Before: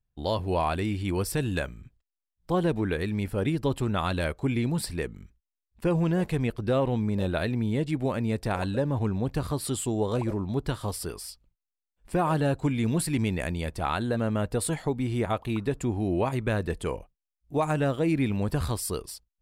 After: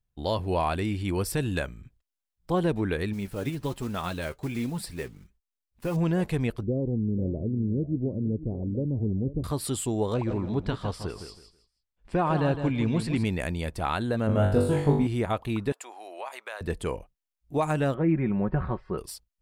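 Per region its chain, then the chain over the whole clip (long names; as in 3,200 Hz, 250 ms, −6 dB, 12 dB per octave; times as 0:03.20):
0:03.13–0:05.97: one scale factor per block 5 bits + flanger 1.3 Hz, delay 3.7 ms, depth 4.3 ms, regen +48%
0:06.63–0:09.44: inverse Chebyshev low-pass filter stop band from 1,500 Hz, stop band 60 dB + single-tap delay 488 ms −14.5 dB
0:10.14–0:13.25: low-pass filter 4,700 Hz + repeating echo 161 ms, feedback 24%, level −9 dB
0:14.27–0:15.07: de-essing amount 75% + tilt shelving filter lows +4.5 dB, about 780 Hz + flutter between parallel walls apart 3.5 metres, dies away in 0.56 s
0:15.72–0:16.61: high-pass filter 640 Hz 24 dB per octave + downward compressor 2.5 to 1, threshold −34 dBFS
0:17.94–0:18.98: low-pass filter 1,900 Hz 24 dB per octave + comb filter 5.4 ms, depth 60%
whole clip: no processing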